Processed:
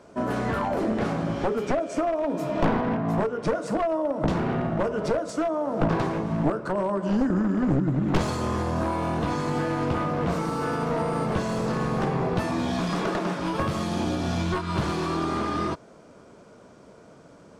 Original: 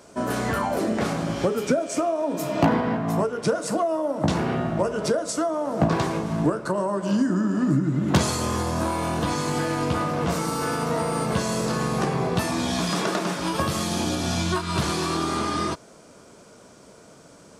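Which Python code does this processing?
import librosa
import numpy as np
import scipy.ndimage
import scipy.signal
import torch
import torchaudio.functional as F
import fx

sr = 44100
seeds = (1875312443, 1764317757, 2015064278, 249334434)

y = np.minimum(x, 2.0 * 10.0 ** (-20.0 / 20.0) - x)
y = fx.lowpass(y, sr, hz=1800.0, slope=6)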